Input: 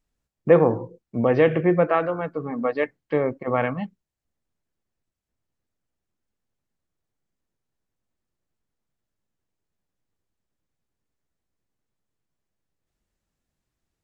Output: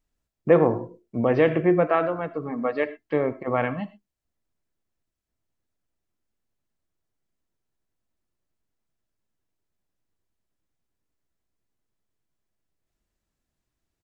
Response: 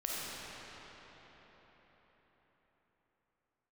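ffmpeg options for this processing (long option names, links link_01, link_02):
-filter_complex "[0:a]asplit=2[link_01][link_02];[link_02]aecho=1:1:3:0.91[link_03];[1:a]atrim=start_sample=2205,afade=type=out:start_time=0.17:duration=0.01,atrim=end_sample=7938[link_04];[link_03][link_04]afir=irnorm=-1:irlink=0,volume=-13dB[link_05];[link_01][link_05]amix=inputs=2:normalize=0,volume=-2.5dB"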